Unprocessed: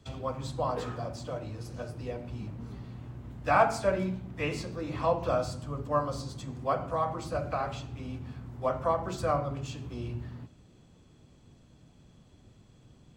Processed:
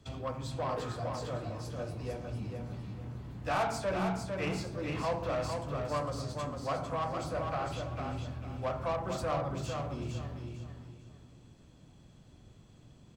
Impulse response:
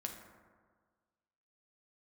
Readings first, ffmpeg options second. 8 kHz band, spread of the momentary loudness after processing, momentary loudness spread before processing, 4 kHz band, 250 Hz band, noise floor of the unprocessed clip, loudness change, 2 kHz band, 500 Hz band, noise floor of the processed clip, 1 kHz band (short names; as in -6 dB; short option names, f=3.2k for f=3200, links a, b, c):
-0.5 dB, 10 LU, 13 LU, +0.5 dB, -1.5 dB, -59 dBFS, -3.5 dB, -3.5 dB, -4.0 dB, -58 dBFS, -4.5 dB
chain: -filter_complex "[0:a]asplit=2[a][b];[b]adelay=26,volume=-14dB[c];[a][c]amix=inputs=2:normalize=0,asoftclip=type=tanh:threshold=-21dB,aeval=exprs='0.0891*(cos(1*acos(clip(val(0)/0.0891,-1,1)))-cos(1*PI/2))+0.00708*(cos(5*acos(clip(val(0)/0.0891,-1,1)))-cos(5*PI/2))':c=same,aecho=1:1:452|904|1356|1808:0.562|0.163|0.0473|0.0137,volume=-4dB"